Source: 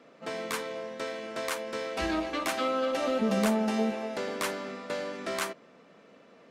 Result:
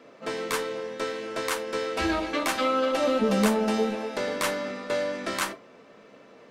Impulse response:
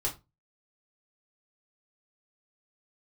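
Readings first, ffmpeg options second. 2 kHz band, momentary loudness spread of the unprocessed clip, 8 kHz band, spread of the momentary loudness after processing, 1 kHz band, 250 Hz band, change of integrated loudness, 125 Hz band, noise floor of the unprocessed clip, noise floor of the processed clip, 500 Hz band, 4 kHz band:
+4.5 dB, 10 LU, +4.5 dB, 9 LU, +4.0 dB, +3.0 dB, +4.0 dB, +3.5 dB, -57 dBFS, -52 dBFS, +4.5 dB, +4.5 dB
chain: -filter_complex "[0:a]asplit=2[s0][s1];[1:a]atrim=start_sample=2205[s2];[s1][s2]afir=irnorm=-1:irlink=0,volume=0.398[s3];[s0][s3]amix=inputs=2:normalize=0,volume=1.19"

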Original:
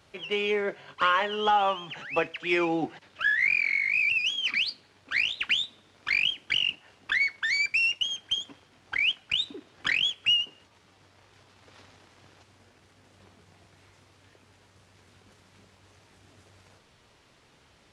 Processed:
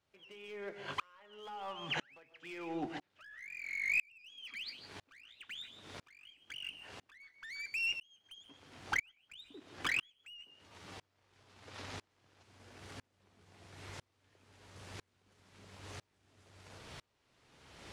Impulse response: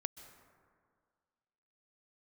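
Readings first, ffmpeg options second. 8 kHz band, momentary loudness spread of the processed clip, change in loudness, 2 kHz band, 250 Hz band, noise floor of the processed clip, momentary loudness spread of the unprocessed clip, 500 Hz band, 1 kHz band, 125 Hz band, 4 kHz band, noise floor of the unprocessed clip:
-8.0 dB, 22 LU, -15.0 dB, -14.0 dB, -12.5 dB, -79 dBFS, 10 LU, -17.0 dB, -17.0 dB, -4.5 dB, -18.5 dB, -61 dBFS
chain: -filter_complex "[0:a]aeval=exprs='0.266*(cos(1*acos(clip(val(0)/0.266,-1,1)))-cos(1*PI/2))+0.00237*(cos(8*acos(clip(val(0)/0.266,-1,1)))-cos(8*PI/2))':c=same,acompressor=threshold=0.00891:ratio=6,asoftclip=type=hard:threshold=0.0141,bandreject=f=53.24:t=h:w=4,bandreject=f=106.48:t=h:w=4,bandreject=f=159.72:t=h:w=4,bandreject=f=212.96:t=h:w=4[s0];[1:a]atrim=start_sample=2205,afade=t=out:st=0.22:d=0.01,atrim=end_sample=10143[s1];[s0][s1]afir=irnorm=-1:irlink=0,aeval=exprs='val(0)*pow(10,-36*if(lt(mod(-1*n/s,1),2*abs(-1)/1000),1-mod(-1*n/s,1)/(2*abs(-1)/1000),(mod(-1*n/s,1)-2*abs(-1)/1000)/(1-2*abs(-1)/1000))/20)':c=same,volume=5.31"

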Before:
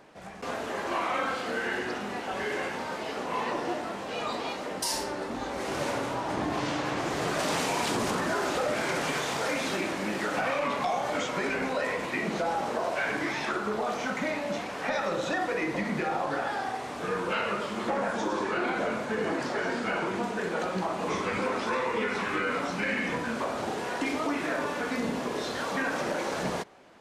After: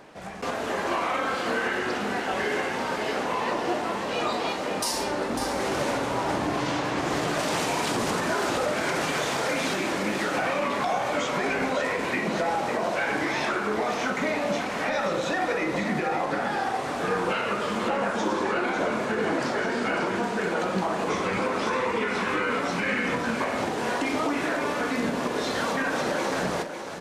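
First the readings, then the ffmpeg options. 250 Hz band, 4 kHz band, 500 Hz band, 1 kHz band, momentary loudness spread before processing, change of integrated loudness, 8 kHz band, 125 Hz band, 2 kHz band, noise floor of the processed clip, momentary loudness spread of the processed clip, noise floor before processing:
+3.5 dB, +3.5 dB, +3.5 dB, +3.5 dB, 5 LU, +3.5 dB, +3.0 dB, +3.5 dB, +3.5 dB, -30 dBFS, 2 LU, -36 dBFS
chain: -af "alimiter=limit=0.0708:level=0:latency=1:release=206,aecho=1:1:549:0.398,volume=1.88"

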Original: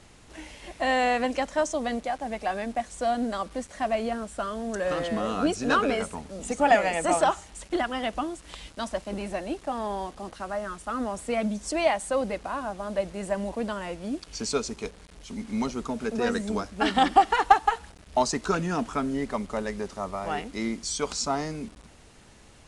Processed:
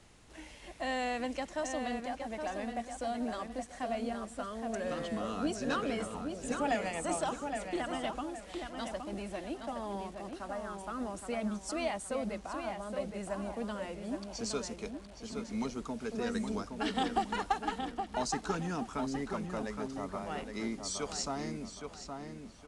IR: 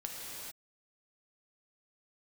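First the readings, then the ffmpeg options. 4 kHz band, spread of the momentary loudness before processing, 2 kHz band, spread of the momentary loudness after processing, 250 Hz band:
-7.5 dB, 13 LU, -10.0 dB, 8 LU, -6.5 dB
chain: -filter_complex "[0:a]acrossover=split=330|3000[s0][s1][s2];[s1]acompressor=threshold=0.0178:ratio=1.5[s3];[s0][s3][s2]amix=inputs=3:normalize=0,asplit=2[s4][s5];[s5]adelay=818,lowpass=f=3200:p=1,volume=0.531,asplit=2[s6][s7];[s7]adelay=818,lowpass=f=3200:p=1,volume=0.36,asplit=2[s8][s9];[s9]adelay=818,lowpass=f=3200:p=1,volume=0.36,asplit=2[s10][s11];[s11]adelay=818,lowpass=f=3200:p=1,volume=0.36[s12];[s6][s8][s10][s12]amix=inputs=4:normalize=0[s13];[s4][s13]amix=inputs=2:normalize=0,volume=0.447"

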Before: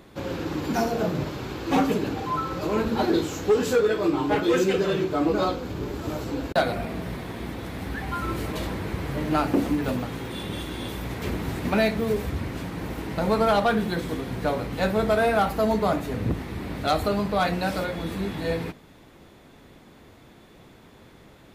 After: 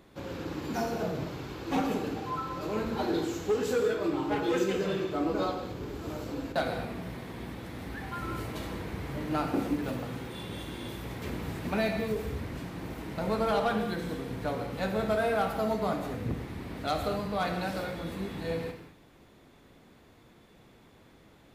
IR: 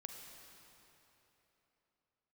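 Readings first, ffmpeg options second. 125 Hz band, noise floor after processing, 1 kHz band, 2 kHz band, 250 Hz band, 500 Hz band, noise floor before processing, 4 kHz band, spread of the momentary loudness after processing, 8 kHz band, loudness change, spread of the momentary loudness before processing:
-6.5 dB, -58 dBFS, -6.5 dB, -6.5 dB, -6.5 dB, -6.5 dB, -51 dBFS, -7.0 dB, 11 LU, -6.5 dB, -6.5 dB, 11 LU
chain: -filter_complex "[1:a]atrim=start_sample=2205,afade=t=out:st=0.28:d=0.01,atrim=end_sample=12789[s0];[0:a][s0]afir=irnorm=-1:irlink=0,volume=0.794"

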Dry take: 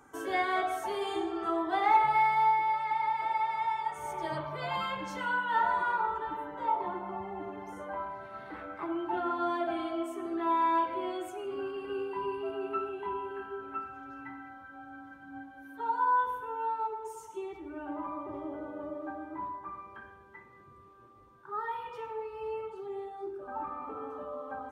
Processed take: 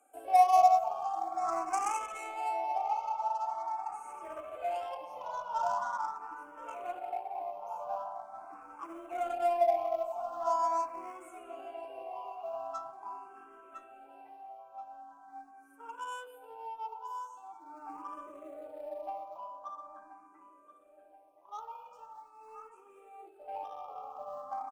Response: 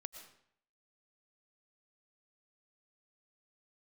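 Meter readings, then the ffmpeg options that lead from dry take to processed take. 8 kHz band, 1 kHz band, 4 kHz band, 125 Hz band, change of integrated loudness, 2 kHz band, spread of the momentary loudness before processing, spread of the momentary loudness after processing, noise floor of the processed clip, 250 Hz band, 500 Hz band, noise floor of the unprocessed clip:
no reading, -1.5 dB, -8.5 dB, under -20 dB, -1.5 dB, -12.5 dB, 16 LU, 22 LU, -60 dBFS, -15.5 dB, -0.5 dB, -55 dBFS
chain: -filter_complex "[0:a]highpass=270,acrossover=split=2800[s0][s1];[s1]acompressor=threshold=0.00112:ratio=4:attack=1:release=60[s2];[s0][s2]amix=inputs=2:normalize=0,asplit=3[s3][s4][s5];[s3]bandpass=f=730:t=q:w=8,volume=1[s6];[s4]bandpass=f=1090:t=q:w=8,volume=0.501[s7];[s5]bandpass=f=2440:t=q:w=8,volume=0.355[s8];[s6][s7][s8]amix=inputs=3:normalize=0,equalizer=f=400:t=o:w=0.27:g=-14.5,asplit=2[s9][s10];[s10]adynamicsmooth=sensitivity=7:basefreq=750,volume=1.19[s11];[s9][s11]amix=inputs=2:normalize=0,aexciter=amount=12.9:drive=9.4:freq=6200,acrossover=split=430[s12][s13];[s12]acrusher=bits=4:mode=log:mix=0:aa=0.000001[s14];[s14][s13]amix=inputs=2:normalize=0,asplit=2[s15][s16];[s16]adelay=1029,lowpass=f=2700:p=1,volume=0.299,asplit=2[s17][s18];[s18]adelay=1029,lowpass=f=2700:p=1,volume=0.42,asplit=2[s19][s20];[s20]adelay=1029,lowpass=f=2700:p=1,volume=0.42,asplit=2[s21][s22];[s22]adelay=1029,lowpass=f=2700:p=1,volume=0.42[s23];[s15][s17][s19][s21][s23]amix=inputs=5:normalize=0,asplit=2[s24][s25];[s25]afreqshift=0.43[s26];[s24][s26]amix=inputs=2:normalize=1,volume=2"

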